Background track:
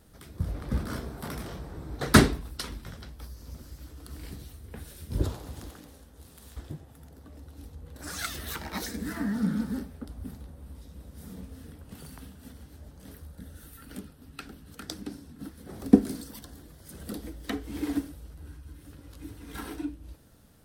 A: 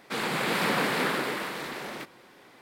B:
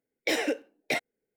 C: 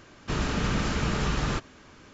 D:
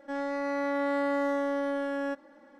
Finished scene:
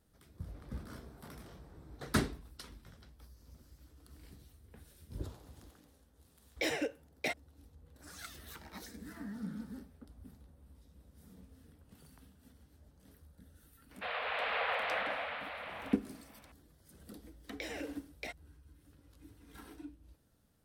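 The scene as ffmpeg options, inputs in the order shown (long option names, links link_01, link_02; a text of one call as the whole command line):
ffmpeg -i bed.wav -i cue0.wav -i cue1.wav -filter_complex "[2:a]asplit=2[link_01][link_02];[0:a]volume=-14dB[link_03];[1:a]highpass=frequency=220:width_type=q:width=0.5412,highpass=frequency=220:width_type=q:width=1.307,lowpass=frequency=3300:width_type=q:width=0.5176,lowpass=frequency=3300:width_type=q:width=0.7071,lowpass=frequency=3300:width_type=q:width=1.932,afreqshift=260[link_04];[link_02]acompressor=threshold=-36dB:ratio=6:attack=3.2:release=140:knee=1:detection=peak[link_05];[link_01]atrim=end=1.36,asetpts=PTS-STARTPTS,volume=-7dB,afade=type=in:duration=0.004:curve=hsin,afade=type=out:start_time=1.356:duration=0.004:curve=hsin,adelay=279594S[link_06];[link_04]atrim=end=2.61,asetpts=PTS-STARTPTS,volume=-7.5dB,afade=type=in:duration=0.004:curve=hsin,afade=type=out:start_time=2.606:duration=0.004:curve=hsin,adelay=13910[link_07];[link_05]atrim=end=1.36,asetpts=PTS-STARTPTS,volume=-3.5dB,afade=type=in:duration=0.004:curve=hsin,afade=type=out:start_time=1.356:duration=0.004:curve=hsin,adelay=17330[link_08];[link_03][link_06][link_07][link_08]amix=inputs=4:normalize=0" out.wav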